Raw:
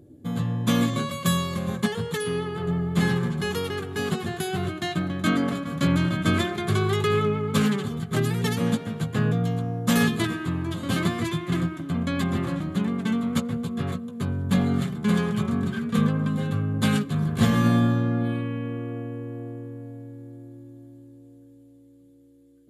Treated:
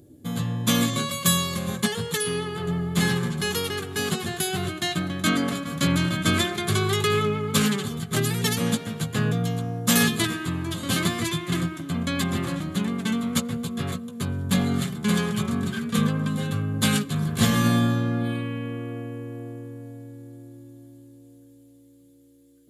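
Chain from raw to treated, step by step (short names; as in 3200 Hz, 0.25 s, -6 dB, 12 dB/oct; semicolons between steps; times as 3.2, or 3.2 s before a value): high shelf 2800 Hz +11.5 dB; gain -1 dB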